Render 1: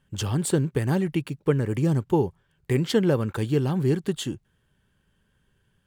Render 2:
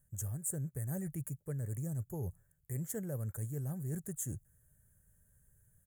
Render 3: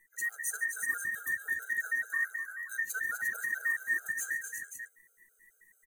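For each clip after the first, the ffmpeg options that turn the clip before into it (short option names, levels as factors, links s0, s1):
-af "firequalizer=gain_entry='entry(110,0);entry(210,-11);entry(340,-16);entry(620,-5);entry(890,-18);entry(1800,-10);entry(2800,-29);entry(4500,-25);entry(6700,5);entry(12000,14)':delay=0.05:min_phase=1,areverse,acompressor=threshold=0.0126:ratio=5,areverse,volume=1.12"
-af "afftfilt=real='real(if(between(b,1,1012),(2*floor((b-1)/92)+1)*92-b,b),0)':imag='imag(if(between(b,1,1012),(2*floor((b-1)/92)+1)*92-b,b),0)*if(between(b,1,1012),-1,1)':win_size=2048:overlap=0.75,aecho=1:1:41|138|252|313|352|530:0.141|0.168|0.398|0.112|0.473|0.376,afftfilt=real='re*gt(sin(2*PI*4.6*pts/sr)*(1-2*mod(floor(b*sr/1024/410),2)),0)':imag='im*gt(sin(2*PI*4.6*pts/sr)*(1-2*mod(floor(b*sr/1024/410),2)),0)':win_size=1024:overlap=0.75,volume=1.88"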